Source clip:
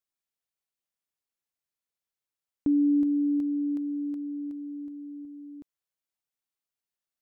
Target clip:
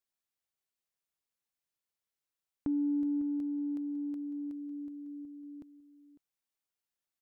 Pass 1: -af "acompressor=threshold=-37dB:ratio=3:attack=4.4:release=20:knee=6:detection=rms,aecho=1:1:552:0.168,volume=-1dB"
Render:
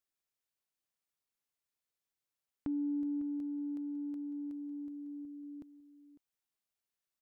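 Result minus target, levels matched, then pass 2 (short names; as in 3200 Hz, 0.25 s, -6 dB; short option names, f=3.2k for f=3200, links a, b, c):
compressor: peak gain reduction +4 dB
-af "acompressor=threshold=-31dB:ratio=3:attack=4.4:release=20:knee=6:detection=rms,aecho=1:1:552:0.168,volume=-1dB"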